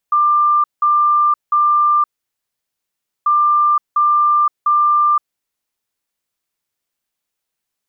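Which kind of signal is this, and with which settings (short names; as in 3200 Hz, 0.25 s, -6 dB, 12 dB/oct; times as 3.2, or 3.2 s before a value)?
beep pattern sine 1190 Hz, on 0.52 s, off 0.18 s, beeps 3, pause 1.22 s, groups 2, -10 dBFS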